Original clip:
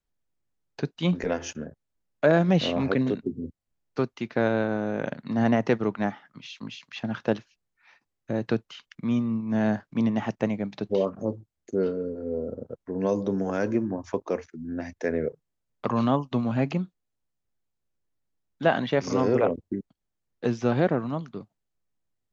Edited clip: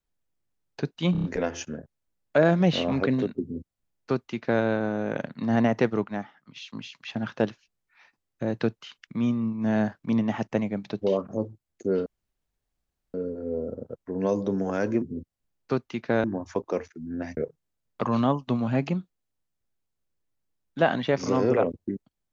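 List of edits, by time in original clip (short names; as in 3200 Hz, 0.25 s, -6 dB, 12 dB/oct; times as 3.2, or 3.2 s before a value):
1.12 stutter 0.03 s, 5 plays
3.29–4.51 copy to 13.82
5.92–6.44 gain -5 dB
11.94 insert room tone 1.08 s
14.95–15.21 cut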